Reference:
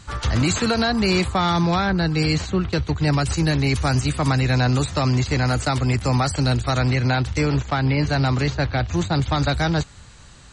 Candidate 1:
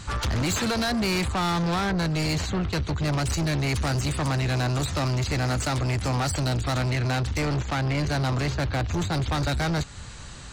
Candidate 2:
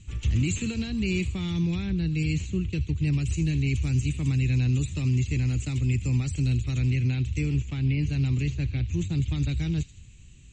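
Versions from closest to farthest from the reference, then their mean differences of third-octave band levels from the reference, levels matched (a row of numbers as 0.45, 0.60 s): 1, 2; 4.5, 7.5 dB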